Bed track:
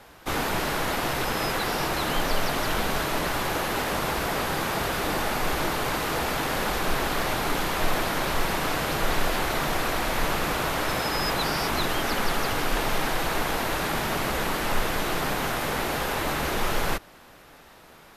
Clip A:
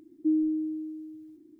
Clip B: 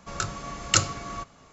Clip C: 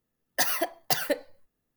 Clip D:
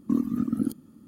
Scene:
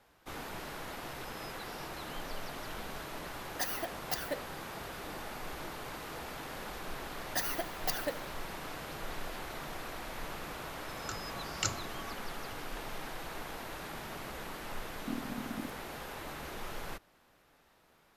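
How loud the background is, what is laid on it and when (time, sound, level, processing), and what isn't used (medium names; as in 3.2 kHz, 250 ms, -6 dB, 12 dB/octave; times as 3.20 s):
bed track -16 dB
3.21 s: add C -10.5 dB
6.97 s: add C -9 dB + feedback delay 75 ms, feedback 54%, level -15.5 dB
10.89 s: add B -12.5 dB
14.98 s: add D -14.5 dB
not used: A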